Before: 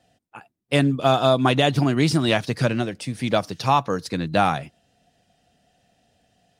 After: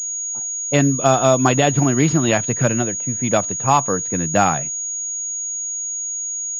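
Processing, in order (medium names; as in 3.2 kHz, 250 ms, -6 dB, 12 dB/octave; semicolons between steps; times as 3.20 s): level-controlled noise filter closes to 450 Hz, open at -17 dBFS; class-D stage that switches slowly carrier 6.7 kHz; trim +3 dB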